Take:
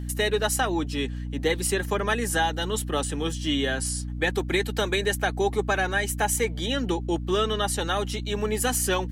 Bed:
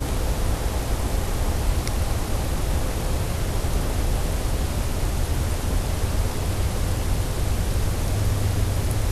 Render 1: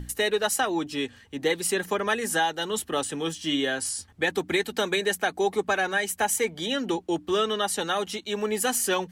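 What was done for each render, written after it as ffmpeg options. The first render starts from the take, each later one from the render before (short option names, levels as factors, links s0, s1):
-af "bandreject=f=60:t=h:w=6,bandreject=f=120:t=h:w=6,bandreject=f=180:t=h:w=6,bandreject=f=240:t=h:w=6,bandreject=f=300:t=h:w=6"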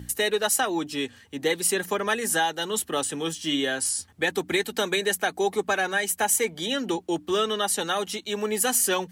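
-af "highpass=75,highshelf=f=6900:g=6.5"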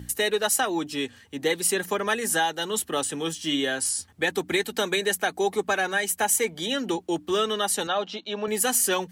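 -filter_complex "[0:a]asettb=1/sr,asplit=3[s0][s1][s2];[s0]atrim=end=7.874[s3];[s1]atrim=start=7.87:end=8.48,asetpts=PTS-STARTPTS,afade=t=in:d=0.004:c=qsin,afade=t=out:st=0.606:d=0.004:c=qsin,highpass=180,equalizer=f=380:t=q:w=4:g=-4,equalizer=f=640:t=q:w=4:g=5,equalizer=f=2000:t=q:w=4:g=-8,lowpass=f=4500:w=0.5412,lowpass=f=4500:w=1.3066[s4];[s2]atrim=start=8.476[s5];[s3][s4]acrossfade=d=0.004:c1=hsin:c2=qsin[s6];[s6][s5]acrossfade=d=0.004:c1=qsin:c2=hsin"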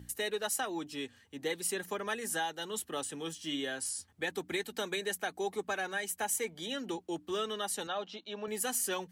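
-af "volume=0.299"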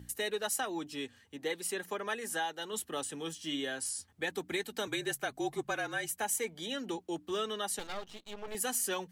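-filter_complex "[0:a]asettb=1/sr,asplit=3[s0][s1][s2];[s0]atrim=end=1.364[s3];[s1]atrim=start=1.36:end=2.73,asetpts=PTS-STARTPTS,afade=t=in:d=0.004:c=qsin,afade=t=out:st=1.366:d=0.004:c=qsin,bass=f=250:g=-5,treble=f=4000:g=-3[s4];[s2]atrim=start=2.726[s5];[s3][s4]acrossfade=d=0.004:c1=hsin:c2=qsin[s6];[s6][s5]acrossfade=d=0.004:c1=qsin:c2=hsin,asettb=1/sr,asplit=3[s7][s8][s9];[s7]atrim=end=4.874[s10];[s8]atrim=start=4.87:end=6.14,asetpts=PTS-STARTPTS,afade=t=in:d=0.004:c=qsin,afade=t=out:st=1.266:d=0.004:c=qsin,afreqshift=-43[s11];[s9]atrim=start=6.136[s12];[s10][s11]acrossfade=d=0.004:c1=hsin:c2=qsin[s13];[s13][s12]acrossfade=d=0.004:c1=qsin:c2=hsin,asettb=1/sr,asplit=3[s14][s15][s16];[s14]atrim=end=7.794[s17];[s15]atrim=start=7.79:end=8.55,asetpts=PTS-STARTPTS,afade=t=in:d=0.004:c=qsin,afade=t=out:st=0.756:d=0.004:c=qsin,aeval=exprs='max(val(0),0)':c=same[s18];[s16]atrim=start=8.546[s19];[s17][s18]acrossfade=d=0.004:c1=hsin:c2=qsin[s20];[s20][s19]acrossfade=d=0.004:c1=qsin:c2=hsin"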